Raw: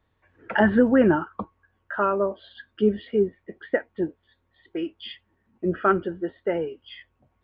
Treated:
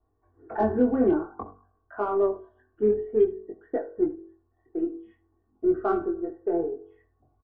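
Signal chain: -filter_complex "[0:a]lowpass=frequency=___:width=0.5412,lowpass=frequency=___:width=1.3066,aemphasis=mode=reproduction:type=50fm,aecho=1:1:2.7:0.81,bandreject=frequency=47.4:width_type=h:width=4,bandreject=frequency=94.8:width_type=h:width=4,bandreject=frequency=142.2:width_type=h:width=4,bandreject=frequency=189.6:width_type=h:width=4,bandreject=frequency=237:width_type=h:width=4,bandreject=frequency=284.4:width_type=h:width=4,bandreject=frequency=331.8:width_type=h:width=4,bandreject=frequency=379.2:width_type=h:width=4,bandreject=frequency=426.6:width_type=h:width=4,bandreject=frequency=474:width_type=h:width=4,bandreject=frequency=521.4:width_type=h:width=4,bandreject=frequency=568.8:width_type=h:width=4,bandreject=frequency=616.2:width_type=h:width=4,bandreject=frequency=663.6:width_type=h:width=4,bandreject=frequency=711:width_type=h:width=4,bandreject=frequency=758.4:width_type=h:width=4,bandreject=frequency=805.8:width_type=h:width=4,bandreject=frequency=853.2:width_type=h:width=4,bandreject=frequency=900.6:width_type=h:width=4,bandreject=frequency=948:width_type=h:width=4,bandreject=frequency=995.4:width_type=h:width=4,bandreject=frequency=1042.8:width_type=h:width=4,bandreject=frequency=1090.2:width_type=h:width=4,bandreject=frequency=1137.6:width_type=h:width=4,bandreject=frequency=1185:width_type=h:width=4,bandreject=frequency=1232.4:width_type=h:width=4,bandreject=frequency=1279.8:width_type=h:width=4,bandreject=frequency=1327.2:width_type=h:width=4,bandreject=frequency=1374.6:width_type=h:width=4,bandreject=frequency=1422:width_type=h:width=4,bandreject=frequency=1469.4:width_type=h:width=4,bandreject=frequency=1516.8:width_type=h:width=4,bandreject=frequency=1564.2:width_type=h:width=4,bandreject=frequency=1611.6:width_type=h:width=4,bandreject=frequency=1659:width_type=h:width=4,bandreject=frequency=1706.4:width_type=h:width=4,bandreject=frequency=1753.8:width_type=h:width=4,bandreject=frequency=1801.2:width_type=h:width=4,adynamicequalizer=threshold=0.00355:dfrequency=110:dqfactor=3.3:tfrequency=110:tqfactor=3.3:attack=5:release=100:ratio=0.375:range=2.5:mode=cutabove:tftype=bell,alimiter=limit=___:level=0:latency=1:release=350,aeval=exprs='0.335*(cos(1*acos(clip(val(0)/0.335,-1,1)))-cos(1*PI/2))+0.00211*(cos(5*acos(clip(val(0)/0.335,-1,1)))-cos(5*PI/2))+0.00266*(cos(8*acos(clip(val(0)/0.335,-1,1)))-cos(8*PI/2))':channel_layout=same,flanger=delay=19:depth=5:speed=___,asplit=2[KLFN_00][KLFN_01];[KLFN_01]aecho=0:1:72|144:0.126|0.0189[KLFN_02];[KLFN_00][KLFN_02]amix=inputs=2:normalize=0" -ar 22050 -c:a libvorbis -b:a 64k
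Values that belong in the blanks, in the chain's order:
1100, 1100, -9.5dB, 0.52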